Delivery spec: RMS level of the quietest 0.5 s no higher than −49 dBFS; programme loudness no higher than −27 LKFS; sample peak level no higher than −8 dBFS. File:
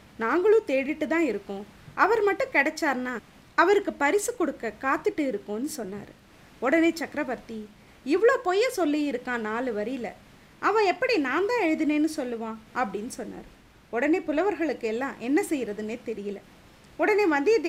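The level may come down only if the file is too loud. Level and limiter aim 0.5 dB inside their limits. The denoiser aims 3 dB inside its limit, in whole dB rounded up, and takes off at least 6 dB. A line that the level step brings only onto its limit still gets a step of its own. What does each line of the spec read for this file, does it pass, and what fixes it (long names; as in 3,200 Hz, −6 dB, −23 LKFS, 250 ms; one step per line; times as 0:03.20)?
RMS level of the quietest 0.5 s −53 dBFS: in spec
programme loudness −26.0 LKFS: out of spec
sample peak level −6.0 dBFS: out of spec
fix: level −1.5 dB
brickwall limiter −8.5 dBFS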